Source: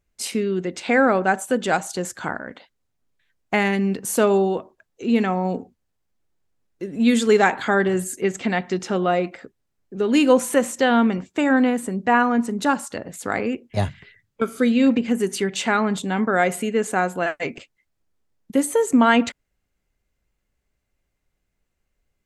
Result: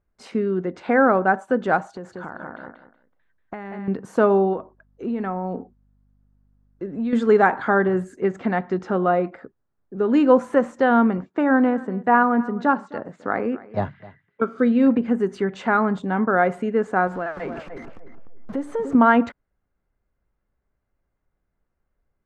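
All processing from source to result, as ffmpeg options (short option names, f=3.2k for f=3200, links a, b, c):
-filter_complex "[0:a]asettb=1/sr,asplit=3[a][b][c];[a]atrim=end=1.884[d];[b]atrim=start=1.88:end=3.88,asetpts=PTS-STARTPTS,afade=t=in:d=0.004:c=qsin,afade=t=out:st=1.996:d=0.004:c=qsin,asplit=2[e][f];[f]adelay=187,lowpass=f=4.9k:p=1,volume=-5.5dB,asplit=2[g][h];[h]adelay=187,lowpass=f=4.9k:p=1,volume=0.24,asplit=2[i][j];[j]adelay=187,lowpass=f=4.9k:p=1,volume=0.24[k];[e][g][i][k]amix=inputs=4:normalize=0,atrim=end_sample=88200,acompressor=threshold=-30dB:ratio=6:attack=3.2:release=140:knee=1:detection=peak[l];[c]atrim=start=3.876[m];[d][l]acrossfade=d=0.004:c1=hsin:c2=qsin[n];[n][m]acrossfade=d=0.004:c1=qsin:c2=hsin,asettb=1/sr,asplit=3[o][p][q];[o]atrim=end=4.534[r];[p]atrim=start=4.53:end=7.13,asetpts=PTS-STARTPTS,afade=t=in:d=0.004:c=qsin,afade=t=out:st=2.596:d=0.004:c=qsin,acompressor=threshold=-23dB:ratio=4:attack=3.2:release=140:knee=1:detection=peak,aeval=exprs='val(0)+0.001*(sin(2*PI*50*n/s)+sin(2*PI*2*50*n/s)/2+sin(2*PI*3*50*n/s)/3+sin(2*PI*4*50*n/s)/4+sin(2*PI*5*50*n/s)/5)':c=same[s];[q]atrim=start=7.126[t];[r][s]acrossfade=d=0.004:c1=hsin:c2=qsin[u];[u][t]acrossfade=d=0.004:c1=qsin:c2=hsin,asettb=1/sr,asplit=3[v][w][x];[v]atrim=end=11.254[y];[w]atrim=start=11.25:end=14.59,asetpts=PTS-STARTPTS,afade=t=in:d=0.004:c=qsin,afade=t=out:st=3.336:d=0.004:c=qsin,highpass=140,lowpass=5.6k,aecho=1:1:260:0.106,atrim=end_sample=147294[z];[x]atrim=start=14.586[aa];[y][z]acrossfade=d=0.004:c1=hsin:c2=qsin[ab];[ab][aa]acrossfade=d=0.004:c1=qsin:c2=hsin,asettb=1/sr,asplit=3[ac][ad][ae];[ac]atrim=end=17.074[af];[ad]atrim=start=17.07:end=18.95,asetpts=PTS-STARTPTS,afade=t=in:d=0.004:c=qsin,afade=t=out:st=1.876:d=0.004:c=qsin,aeval=exprs='val(0)+0.5*0.0266*sgn(val(0))':c=same,acompressor=threshold=-28dB:ratio=2:attack=3.2:release=140:knee=1:detection=peak,asplit=2[ag][ah];[ah]adelay=299,lowpass=f=1.1k:p=1,volume=-6dB,asplit=2[ai][aj];[aj]adelay=299,lowpass=f=1.1k:p=1,volume=0.28,asplit=2[ak][al];[al]adelay=299,lowpass=f=1.1k:p=1,volume=0.28,asplit=2[am][an];[an]adelay=299,lowpass=f=1.1k:p=1,volume=0.28[ao];[ag][ai][ak][am][ao]amix=inputs=5:normalize=0,atrim=end_sample=82908[ap];[ae]atrim=start=18.946[aq];[af][ap]acrossfade=d=0.004:c1=hsin:c2=qsin[ar];[ar][aq]acrossfade=d=0.004:c1=qsin:c2=hsin,lowpass=3.9k,highshelf=f=1.9k:t=q:w=1.5:g=-9.5"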